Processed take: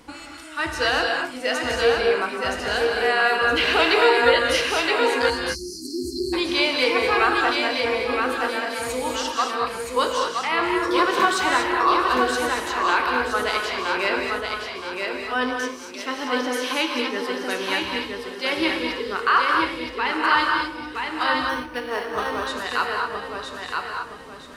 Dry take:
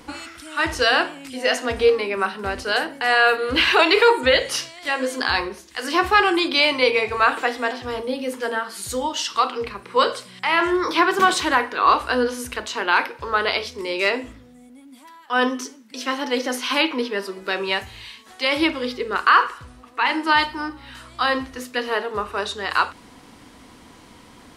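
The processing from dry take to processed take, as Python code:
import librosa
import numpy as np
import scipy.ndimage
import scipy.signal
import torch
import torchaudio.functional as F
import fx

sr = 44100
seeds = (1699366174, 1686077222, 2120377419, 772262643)

y = fx.echo_feedback(x, sr, ms=970, feedback_pct=34, wet_db=-4)
y = fx.spec_erase(y, sr, start_s=5.3, length_s=1.03, low_hz=400.0, high_hz=4100.0)
y = fx.rev_gated(y, sr, seeds[0], gate_ms=260, shape='rising', drr_db=2.0)
y = fx.resample_linear(y, sr, factor=6, at=(21.49, 22.47))
y = F.gain(torch.from_numpy(y), -4.5).numpy()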